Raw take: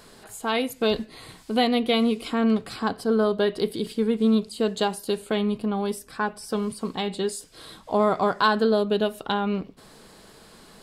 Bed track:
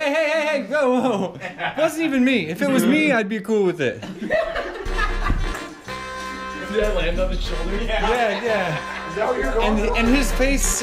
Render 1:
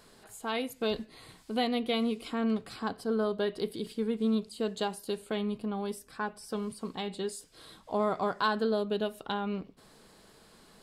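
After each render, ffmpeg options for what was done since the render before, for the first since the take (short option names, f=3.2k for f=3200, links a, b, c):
-af "volume=-8dB"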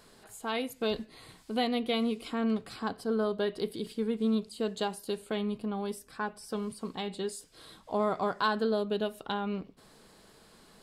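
-af anull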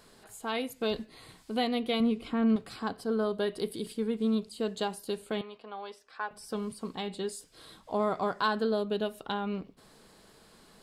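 -filter_complex "[0:a]asettb=1/sr,asplit=3[a][b][c];[a]atrim=end=2.004[d];[b]atrim=start=2:end=2.56,asetpts=PTS-STARTPTS,afade=t=in:d=0.004:c=qsin,afade=t=out:st=0.556:d=0.004:c=qsin,bass=f=250:g=7,treble=f=4k:g=-9[e];[c]atrim=start=2.556[f];[d][e]acrossfade=d=0.004:c1=hsin:c2=qsin[g];[g][f]acrossfade=d=0.004:c1=qsin:c2=hsin,asettb=1/sr,asplit=3[h][i][j];[h]atrim=end=3.344[k];[i]atrim=start=3.34:end=3.97,asetpts=PTS-STARTPTS,afade=t=in:d=0.004:c=qsin,afade=t=out:st=0.626:d=0.004:c=qsin,equalizer=f=9.7k:w=1.5:g=7.5[l];[j]atrim=start=3.966[m];[k][l]acrossfade=d=0.004:c1=hsin:c2=qsin[n];[n][m]acrossfade=d=0.004:c1=qsin:c2=hsin,asettb=1/sr,asplit=3[o][p][q];[o]atrim=end=5.414[r];[p]atrim=start=5.41:end=6.31,asetpts=PTS-STARTPTS,afade=t=in:d=0.004:c=qsin,afade=t=out:st=0.896:d=0.004:c=qsin,acrossover=split=480 5300:gain=0.0631 1 0.0708[s][t][u];[s][t][u]amix=inputs=3:normalize=0[v];[q]atrim=start=6.306[w];[r][v]acrossfade=d=0.004:c1=hsin:c2=qsin[x];[x][w]acrossfade=d=0.004:c1=qsin:c2=hsin"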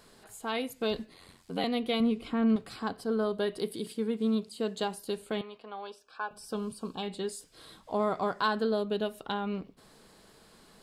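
-filter_complex "[0:a]asettb=1/sr,asplit=3[a][b][c];[a]atrim=end=1.134[d];[b]atrim=start=1.13:end=1.64,asetpts=PTS-STARTPTS,afade=t=in:d=0.004:c=qsin,afade=t=out:st=0.506:d=0.004:c=qsin,aeval=exprs='val(0)*sin(2*PI*45*n/s)':c=same[e];[c]atrim=start=1.636[f];[d][e]acrossfade=d=0.004:c1=hsin:c2=qsin[g];[g][f]acrossfade=d=0.004:c1=qsin:c2=hsin,asettb=1/sr,asplit=3[h][i][j];[h]atrim=end=3.584[k];[i]atrim=start=3.58:end=4.84,asetpts=PTS-STARTPTS,afade=t=in:d=0.004:c=qsin,afade=t=out:st=1.256:d=0.004:c=qsin,highpass=96[l];[j]atrim=start=4.836[m];[k][l]acrossfade=d=0.004:c1=hsin:c2=qsin[n];[n][m]acrossfade=d=0.004:c1=qsin:c2=hsin,asettb=1/sr,asplit=3[o][p][q];[o]atrim=end=5.874[r];[p]atrim=start=5.87:end=7.03,asetpts=PTS-STARTPTS,afade=t=in:d=0.004:c=qsin,afade=t=out:st=1.156:d=0.004:c=qsin,asuperstop=centerf=2000:order=8:qfactor=3.3[s];[q]atrim=start=7.026[t];[r][s]acrossfade=d=0.004:c1=hsin:c2=qsin[u];[u][t]acrossfade=d=0.004:c1=qsin:c2=hsin"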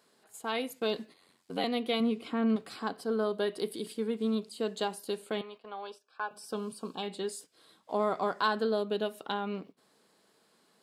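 -af "highpass=210,agate=range=-9dB:threshold=-49dB:ratio=16:detection=peak"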